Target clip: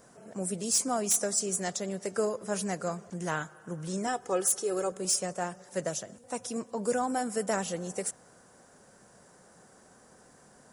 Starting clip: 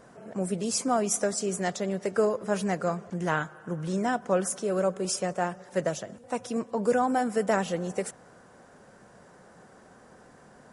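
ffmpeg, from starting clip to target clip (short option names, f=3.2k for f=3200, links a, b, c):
-filter_complex "[0:a]asettb=1/sr,asplit=3[a][b][c];[a]atrim=end=4.074[d];[b]atrim=start=4.07:end=4.92,asetpts=PTS-STARTPTS,afade=t=in:d=0.004:c=qsin,afade=t=out:st=0.846:d=0.004:c=qsin,aecho=1:1:2.4:0.7,atrim=end_sample=37485[e];[c]atrim=start=4.916[f];[d][e]acrossfade=d=0.004:c1=hsin:c2=qsin[g];[g][f]acrossfade=d=0.004:c1=qsin:c2=hsin,acrossover=split=5400[h][i];[i]aeval=exprs='0.168*sin(PI/2*2.51*val(0)/0.168)':c=same[j];[h][j]amix=inputs=2:normalize=0,volume=-5dB"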